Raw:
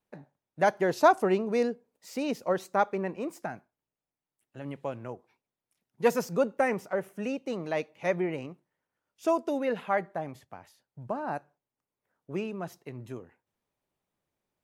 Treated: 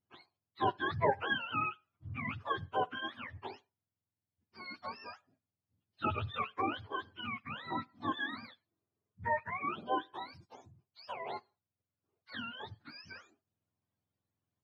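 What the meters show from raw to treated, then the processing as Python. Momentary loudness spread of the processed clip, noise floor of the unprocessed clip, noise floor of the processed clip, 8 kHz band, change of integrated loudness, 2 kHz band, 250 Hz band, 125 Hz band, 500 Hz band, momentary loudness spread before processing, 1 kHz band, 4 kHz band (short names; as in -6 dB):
17 LU, under -85 dBFS, under -85 dBFS, under -25 dB, -8.0 dB, -2.5 dB, -11.5 dB, -4.0 dB, -13.5 dB, 17 LU, -5.0 dB, +2.5 dB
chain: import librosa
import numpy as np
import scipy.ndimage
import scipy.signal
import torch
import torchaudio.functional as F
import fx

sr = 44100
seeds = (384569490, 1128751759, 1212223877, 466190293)

y = fx.octave_mirror(x, sr, pivot_hz=780.0)
y = F.gain(torch.from_numpy(y), -5.0).numpy()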